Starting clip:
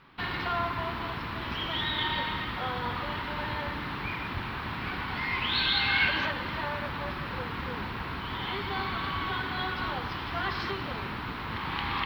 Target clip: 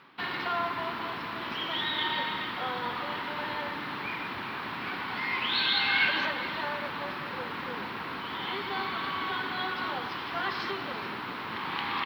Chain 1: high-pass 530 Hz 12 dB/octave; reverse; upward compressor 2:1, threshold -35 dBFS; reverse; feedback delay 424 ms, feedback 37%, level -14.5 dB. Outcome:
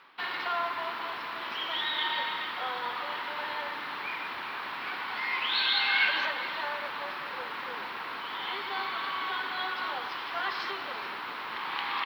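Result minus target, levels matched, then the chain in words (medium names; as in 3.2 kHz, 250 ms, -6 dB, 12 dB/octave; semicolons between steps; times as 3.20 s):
250 Hz band -9.5 dB
high-pass 220 Hz 12 dB/octave; reverse; upward compressor 2:1, threshold -35 dBFS; reverse; feedback delay 424 ms, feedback 37%, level -14.5 dB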